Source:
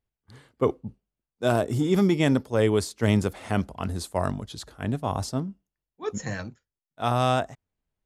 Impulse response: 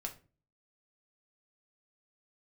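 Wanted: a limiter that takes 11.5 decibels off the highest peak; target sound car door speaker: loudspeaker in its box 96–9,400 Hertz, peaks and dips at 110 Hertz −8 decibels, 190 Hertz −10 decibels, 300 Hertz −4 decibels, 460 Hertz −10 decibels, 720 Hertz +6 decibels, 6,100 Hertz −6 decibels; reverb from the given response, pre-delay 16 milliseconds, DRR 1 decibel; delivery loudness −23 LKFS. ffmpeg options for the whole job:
-filter_complex "[0:a]alimiter=limit=-18.5dB:level=0:latency=1,asplit=2[link_01][link_02];[1:a]atrim=start_sample=2205,adelay=16[link_03];[link_02][link_03]afir=irnorm=-1:irlink=0,volume=0.5dB[link_04];[link_01][link_04]amix=inputs=2:normalize=0,highpass=96,equalizer=frequency=110:width_type=q:width=4:gain=-8,equalizer=frequency=190:width_type=q:width=4:gain=-10,equalizer=frequency=300:width_type=q:width=4:gain=-4,equalizer=frequency=460:width_type=q:width=4:gain=-10,equalizer=frequency=720:width_type=q:width=4:gain=6,equalizer=frequency=6100:width_type=q:width=4:gain=-6,lowpass=frequency=9400:width=0.5412,lowpass=frequency=9400:width=1.3066,volume=9dB"

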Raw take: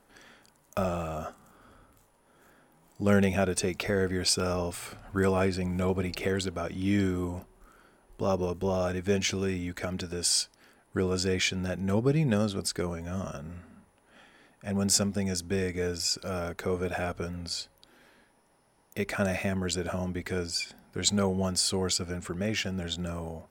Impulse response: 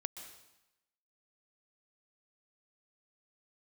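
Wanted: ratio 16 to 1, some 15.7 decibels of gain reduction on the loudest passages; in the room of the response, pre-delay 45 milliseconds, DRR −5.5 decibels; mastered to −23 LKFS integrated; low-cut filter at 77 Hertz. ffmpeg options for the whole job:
-filter_complex "[0:a]highpass=77,acompressor=threshold=-35dB:ratio=16,asplit=2[link_01][link_02];[1:a]atrim=start_sample=2205,adelay=45[link_03];[link_02][link_03]afir=irnorm=-1:irlink=0,volume=7dB[link_04];[link_01][link_04]amix=inputs=2:normalize=0,volume=10.5dB"

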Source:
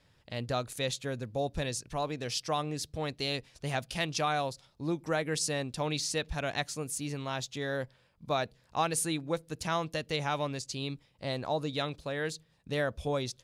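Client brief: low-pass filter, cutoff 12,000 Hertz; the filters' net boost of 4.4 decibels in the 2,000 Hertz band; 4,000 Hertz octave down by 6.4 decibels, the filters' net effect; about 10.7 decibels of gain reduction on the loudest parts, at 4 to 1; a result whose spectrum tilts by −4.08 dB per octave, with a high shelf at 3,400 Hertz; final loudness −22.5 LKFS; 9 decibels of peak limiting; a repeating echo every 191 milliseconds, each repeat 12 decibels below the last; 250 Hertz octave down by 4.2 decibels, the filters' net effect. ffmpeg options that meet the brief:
ffmpeg -i in.wav -af "lowpass=12000,equalizer=frequency=250:width_type=o:gain=-6.5,equalizer=frequency=2000:width_type=o:gain=9,highshelf=frequency=3400:gain=-5.5,equalizer=frequency=4000:width_type=o:gain=-7,acompressor=threshold=-38dB:ratio=4,alimiter=level_in=8.5dB:limit=-24dB:level=0:latency=1,volume=-8.5dB,aecho=1:1:191|382|573:0.251|0.0628|0.0157,volume=21dB" out.wav

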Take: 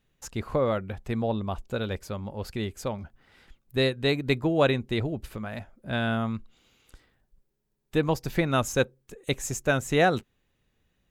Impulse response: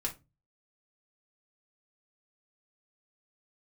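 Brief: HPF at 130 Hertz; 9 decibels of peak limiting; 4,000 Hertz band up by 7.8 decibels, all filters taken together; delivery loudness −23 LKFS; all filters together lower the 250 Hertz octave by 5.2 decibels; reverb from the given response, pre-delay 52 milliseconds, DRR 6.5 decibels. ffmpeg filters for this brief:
-filter_complex "[0:a]highpass=130,equalizer=frequency=250:width_type=o:gain=-6.5,equalizer=frequency=4000:width_type=o:gain=8.5,alimiter=limit=-16.5dB:level=0:latency=1,asplit=2[link_01][link_02];[1:a]atrim=start_sample=2205,adelay=52[link_03];[link_02][link_03]afir=irnorm=-1:irlink=0,volume=-9dB[link_04];[link_01][link_04]amix=inputs=2:normalize=0,volume=7dB"

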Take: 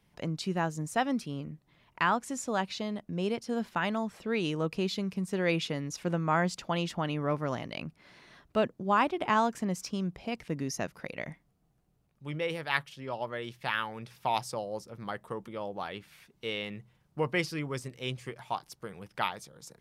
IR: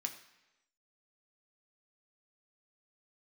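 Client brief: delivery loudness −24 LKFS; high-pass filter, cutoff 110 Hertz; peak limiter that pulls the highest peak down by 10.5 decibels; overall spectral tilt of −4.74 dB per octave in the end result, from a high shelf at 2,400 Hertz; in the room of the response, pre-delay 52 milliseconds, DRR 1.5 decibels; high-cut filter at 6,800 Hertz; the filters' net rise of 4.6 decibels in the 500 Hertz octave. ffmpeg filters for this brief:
-filter_complex "[0:a]highpass=110,lowpass=6800,equalizer=frequency=500:width_type=o:gain=5.5,highshelf=frequency=2400:gain=3.5,alimiter=limit=-19dB:level=0:latency=1,asplit=2[link_01][link_02];[1:a]atrim=start_sample=2205,adelay=52[link_03];[link_02][link_03]afir=irnorm=-1:irlink=0,volume=-1dB[link_04];[link_01][link_04]amix=inputs=2:normalize=0,volume=7.5dB"

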